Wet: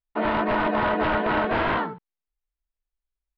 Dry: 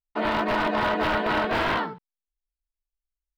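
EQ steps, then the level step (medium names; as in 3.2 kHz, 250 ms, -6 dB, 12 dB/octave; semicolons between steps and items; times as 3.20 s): distance through air 310 m; +2.5 dB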